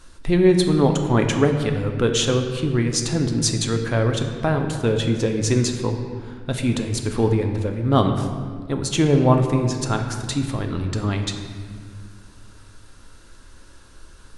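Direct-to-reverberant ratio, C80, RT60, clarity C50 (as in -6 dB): 4.0 dB, 7.5 dB, 1.9 s, 6.0 dB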